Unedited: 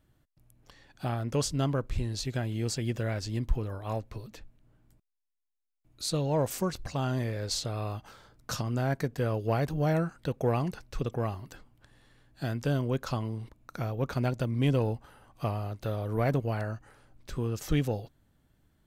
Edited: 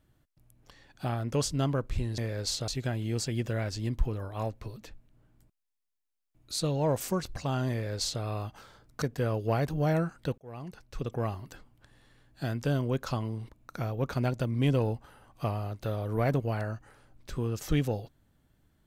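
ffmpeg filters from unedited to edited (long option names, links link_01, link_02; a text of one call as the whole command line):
ffmpeg -i in.wav -filter_complex "[0:a]asplit=5[link_01][link_02][link_03][link_04][link_05];[link_01]atrim=end=2.182[link_06];[link_02]atrim=start=7.218:end=7.722[link_07];[link_03]atrim=start=2.178:end=8.522[link_08];[link_04]atrim=start=9.018:end=10.38,asetpts=PTS-STARTPTS,afade=type=out:start_time=1.358:duration=0.004:curve=hsin[link_09];[link_05]atrim=start=10.38,asetpts=PTS-STARTPTS,afade=type=in:duration=0.88[link_10];[link_06][link_07]acrossfade=duration=0.004:curve1=hsin:curve2=hsin[link_11];[link_11][link_08]acrossfade=duration=0.004:curve1=hsin:curve2=hsin[link_12];[link_09][link_10]concat=n=2:v=0:a=1[link_13];[link_12][link_13]acrossfade=duration=0.004:curve1=hsin:curve2=hsin" out.wav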